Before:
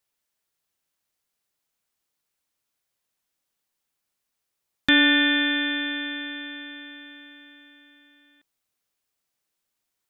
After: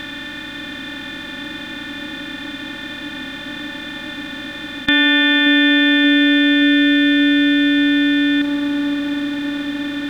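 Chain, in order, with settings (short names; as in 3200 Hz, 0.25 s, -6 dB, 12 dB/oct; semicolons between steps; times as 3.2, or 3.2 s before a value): per-bin compression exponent 0.2; band-limited delay 0.578 s, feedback 72%, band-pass 420 Hz, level -4 dB; gain +2.5 dB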